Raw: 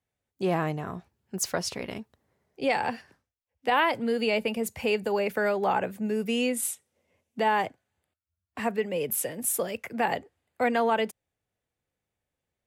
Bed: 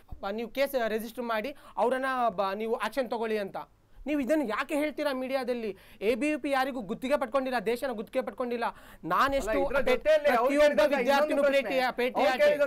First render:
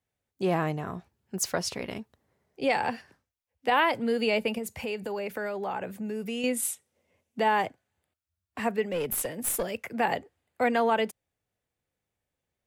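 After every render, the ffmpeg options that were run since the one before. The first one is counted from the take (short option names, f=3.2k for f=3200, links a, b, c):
-filter_complex "[0:a]asettb=1/sr,asplit=3[a][b][c];[a]atrim=end=4.584[d];[b]atrim=start=4.58:end=6.44,asetpts=PTS-STARTPTS,afade=t=in:d=0.004:c=qsin,afade=t=out:st=1.856:d=0.004:c=qsin,acompressor=threshold=-32dB:ratio=2.5:attack=3.2:release=140:knee=1:detection=peak[e];[c]atrim=start=6.436[f];[d][e]acrossfade=d=0.004:c1=hsin:c2=qsin[g];[g][f]acrossfade=d=0.004:c1=qsin:c2=hsin,asettb=1/sr,asplit=3[h][i][j];[h]atrim=end=8.874[k];[i]atrim=start=8.87:end=9.7,asetpts=PTS-STARTPTS,afade=t=in:d=0.004:c=qsin,afade=t=out:st=0.826:d=0.004:c=qsin,aeval=exprs='clip(val(0),-1,0.0398)':c=same[l];[j]atrim=start=9.696[m];[k][l]acrossfade=d=0.004:c1=hsin:c2=qsin[n];[n][m]acrossfade=d=0.004:c1=qsin:c2=hsin"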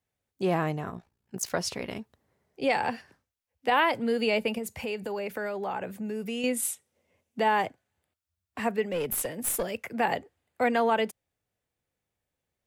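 -filter_complex "[0:a]asplit=3[a][b][c];[a]afade=t=out:st=0.89:d=0.02[d];[b]tremolo=f=58:d=0.788,afade=t=in:st=0.89:d=0.02,afade=t=out:st=1.5:d=0.02[e];[c]afade=t=in:st=1.5:d=0.02[f];[d][e][f]amix=inputs=3:normalize=0"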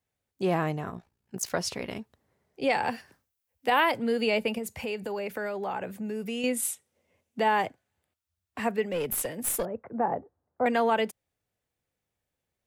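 -filter_complex "[0:a]asettb=1/sr,asplit=3[a][b][c];[a]atrim=end=2.874[d];[b]atrim=start=2.87:end=3.92,asetpts=PTS-STARTPTS,afade=t=in:d=0.004:c=qsin,afade=t=out:st=1.046:d=0.004:c=qsin,highshelf=f=9.6k:g=11.5[e];[c]atrim=start=3.916[f];[d][e]acrossfade=d=0.004:c1=hsin:c2=qsin[g];[g][f]acrossfade=d=0.004:c1=qsin:c2=hsin,asettb=1/sr,asplit=3[h][i][j];[h]atrim=end=9.654[k];[i]atrim=start=9.65:end=10.66,asetpts=PTS-STARTPTS,afade=t=in:d=0.004:c=qsin,afade=t=out:st=1.006:d=0.004:c=qsin,lowpass=f=1.2k:w=0.5412,lowpass=f=1.2k:w=1.3066[l];[j]atrim=start=10.656[m];[k][l]acrossfade=d=0.004:c1=hsin:c2=qsin[n];[n][m]acrossfade=d=0.004:c1=qsin:c2=hsin"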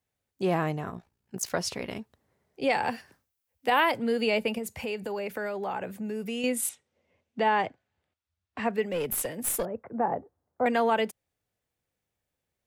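-filter_complex "[0:a]asettb=1/sr,asplit=3[a][b][c];[a]atrim=end=6.694[d];[b]atrim=start=6.69:end=8.73,asetpts=PTS-STARTPTS,afade=t=in:d=0.004:c=qsin,afade=t=out:st=2.036:d=0.004:c=qsin,lowpass=4.8k[e];[c]atrim=start=8.726[f];[d][e]acrossfade=d=0.004:c1=hsin:c2=qsin[g];[g][f]acrossfade=d=0.004:c1=qsin:c2=hsin"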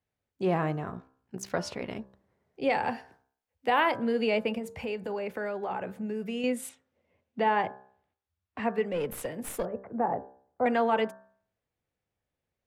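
-af "lowpass=f=2.4k:p=1,bandreject=f=65.36:t=h:w=4,bandreject=f=130.72:t=h:w=4,bandreject=f=196.08:t=h:w=4,bandreject=f=261.44:t=h:w=4,bandreject=f=326.8:t=h:w=4,bandreject=f=392.16:t=h:w=4,bandreject=f=457.52:t=h:w=4,bandreject=f=522.88:t=h:w=4,bandreject=f=588.24:t=h:w=4,bandreject=f=653.6:t=h:w=4,bandreject=f=718.96:t=h:w=4,bandreject=f=784.32:t=h:w=4,bandreject=f=849.68:t=h:w=4,bandreject=f=915.04:t=h:w=4,bandreject=f=980.4:t=h:w=4,bandreject=f=1.04576k:t=h:w=4,bandreject=f=1.11112k:t=h:w=4,bandreject=f=1.17648k:t=h:w=4,bandreject=f=1.24184k:t=h:w=4,bandreject=f=1.3072k:t=h:w=4,bandreject=f=1.37256k:t=h:w=4,bandreject=f=1.43792k:t=h:w=4,bandreject=f=1.50328k:t=h:w=4,bandreject=f=1.56864k:t=h:w=4,bandreject=f=1.634k:t=h:w=4,bandreject=f=1.69936k:t=h:w=4,bandreject=f=1.76472k:t=h:w=4"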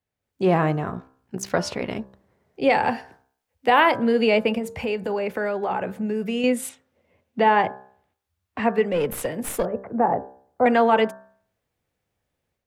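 -af "dynaudnorm=f=190:g=3:m=8dB"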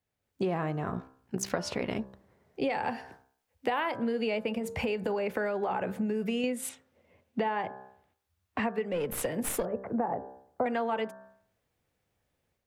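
-af "acompressor=threshold=-27dB:ratio=12"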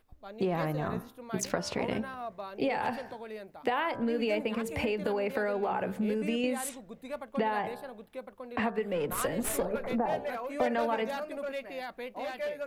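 -filter_complex "[1:a]volume=-12dB[a];[0:a][a]amix=inputs=2:normalize=0"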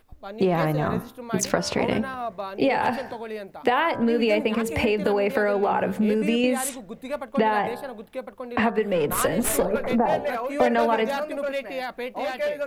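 -af "volume=8.5dB"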